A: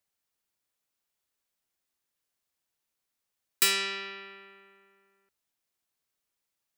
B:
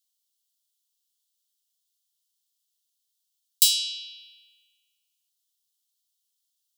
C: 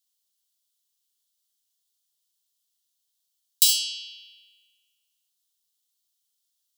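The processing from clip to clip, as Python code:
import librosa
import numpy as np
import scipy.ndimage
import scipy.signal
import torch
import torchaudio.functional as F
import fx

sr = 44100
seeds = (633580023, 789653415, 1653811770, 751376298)

y1 = scipy.signal.sosfilt(scipy.signal.butter(12, 3000.0, 'highpass', fs=sr, output='sos'), x)
y1 = y1 * librosa.db_to_amplitude(6.5)
y2 = fx.room_early_taps(y1, sr, ms=(43, 67), db=(-9.5, -7.0))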